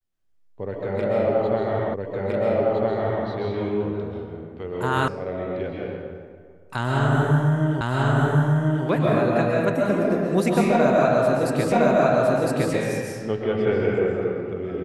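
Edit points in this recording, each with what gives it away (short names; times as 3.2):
1.94 repeat of the last 1.31 s
5.08 sound cut off
7.81 repeat of the last 1.04 s
11.72 repeat of the last 1.01 s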